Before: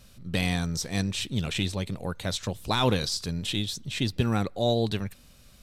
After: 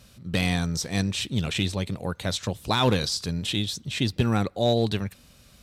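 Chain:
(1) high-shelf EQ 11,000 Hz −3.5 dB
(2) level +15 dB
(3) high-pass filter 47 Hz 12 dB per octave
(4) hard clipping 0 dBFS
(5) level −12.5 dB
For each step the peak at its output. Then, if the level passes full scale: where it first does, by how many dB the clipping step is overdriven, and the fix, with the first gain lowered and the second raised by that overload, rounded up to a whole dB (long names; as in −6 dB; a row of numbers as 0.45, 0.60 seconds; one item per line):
−13.5, +1.5, +3.5, 0.0, −12.5 dBFS
step 2, 3.5 dB
step 2 +11 dB, step 5 −8.5 dB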